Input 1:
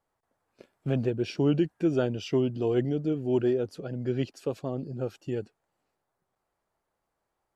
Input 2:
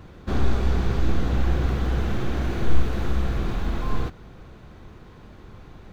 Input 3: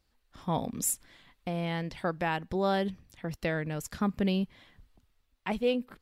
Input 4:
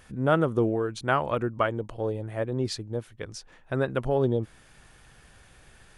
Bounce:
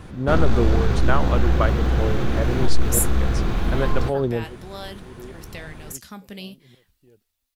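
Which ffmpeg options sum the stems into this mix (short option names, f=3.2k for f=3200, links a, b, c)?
-filter_complex "[0:a]aeval=exprs='val(0)*pow(10,-19*if(lt(mod(-1.4*n/s,1),2*abs(-1.4)/1000),1-mod(-1.4*n/s,1)/(2*abs(-1.4)/1000),(mod(-1.4*n/s,1)-2*abs(-1.4)/1000)/(1-2*abs(-1.4)/1000))/20)':c=same,adelay=1750,volume=-14dB[a];[1:a]acontrast=85,volume=-3dB[b];[2:a]crystalizer=i=6.5:c=0,flanger=delay=6.9:depth=9.2:regen=64:speed=1.1:shape=sinusoidal,adelay=2100,volume=-6dB[c];[3:a]volume=1.5dB[d];[a][b][c][d]amix=inputs=4:normalize=0"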